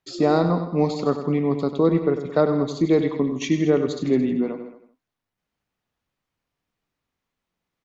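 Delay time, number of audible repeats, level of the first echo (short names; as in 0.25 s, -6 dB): 98 ms, 5, -10.5 dB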